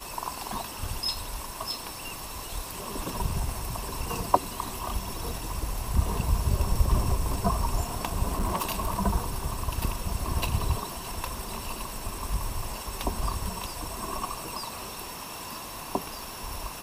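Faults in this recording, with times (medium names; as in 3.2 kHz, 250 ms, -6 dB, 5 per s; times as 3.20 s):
8.32–8.90 s: clipped -22.5 dBFS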